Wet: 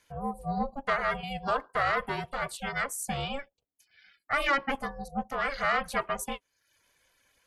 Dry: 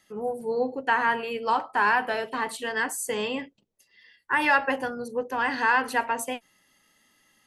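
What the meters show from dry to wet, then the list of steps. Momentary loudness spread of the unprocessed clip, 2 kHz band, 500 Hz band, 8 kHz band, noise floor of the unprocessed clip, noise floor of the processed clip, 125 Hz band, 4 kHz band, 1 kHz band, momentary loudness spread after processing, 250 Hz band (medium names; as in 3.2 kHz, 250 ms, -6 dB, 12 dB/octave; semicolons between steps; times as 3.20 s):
9 LU, -6.5 dB, -5.0 dB, -3.5 dB, -68 dBFS, -80 dBFS, +10.5 dB, -2.0 dB, -5.0 dB, 8 LU, -3.5 dB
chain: saturation -14.5 dBFS, distortion -19 dB; ring modulator 280 Hz; reverb removal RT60 0.59 s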